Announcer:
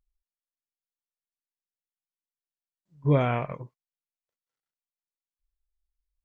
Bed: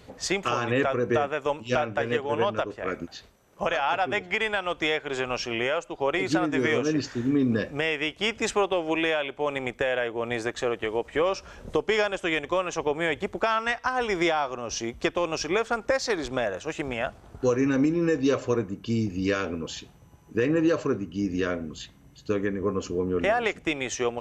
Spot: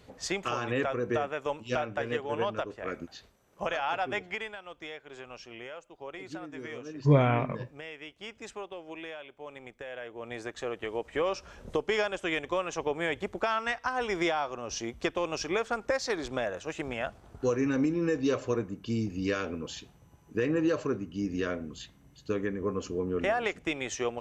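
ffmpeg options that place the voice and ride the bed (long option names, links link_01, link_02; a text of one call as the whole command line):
ffmpeg -i stem1.wav -i stem2.wav -filter_complex "[0:a]adelay=4000,volume=0.5dB[link_01];[1:a]volume=6.5dB,afade=type=out:start_time=4.18:duration=0.38:silence=0.281838,afade=type=in:start_time=9.81:duration=1.49:silence=0.251189[link_02];[link_01][link_02]amix=inputs=2:normalize=0" out.wav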